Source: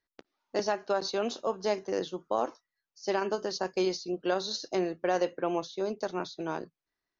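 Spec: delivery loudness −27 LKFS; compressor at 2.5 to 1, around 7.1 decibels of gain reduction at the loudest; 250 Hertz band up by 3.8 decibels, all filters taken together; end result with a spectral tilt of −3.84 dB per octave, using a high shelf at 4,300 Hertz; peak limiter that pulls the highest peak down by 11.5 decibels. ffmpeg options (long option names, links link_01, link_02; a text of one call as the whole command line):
ffmpeg -i in.wav -af "equalizer=frequency=250:width_type=o:gain=6.5,highshelf=frequency=4300:gain=3.5,acompressor=threshold=-32dB:ratio=2.5,volume=13.5dB,alimiter=limit=-16.5dB:level=0:latency=1" out.wav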